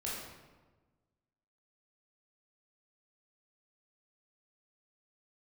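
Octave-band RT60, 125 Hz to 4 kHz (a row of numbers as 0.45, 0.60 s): 1.7, 1.6, 1.4, 1.2, 1.0, 0.80 s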